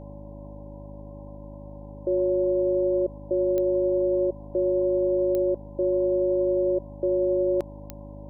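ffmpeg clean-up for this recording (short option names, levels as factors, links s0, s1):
-af "adeclick=t=4,bandreject=f=51.3:t=h:w=4,bandreject=f=102.6:t=h:w=4,bandreject=f=153.9:t=h:w=4,bandreject=f=205.2:t=h:w=4,bandreject=f=256.5:t=h:w=4,bandreject=f=307.8:t=h:w=4,bandreject=f=570:w=30,afwtdn=0.01"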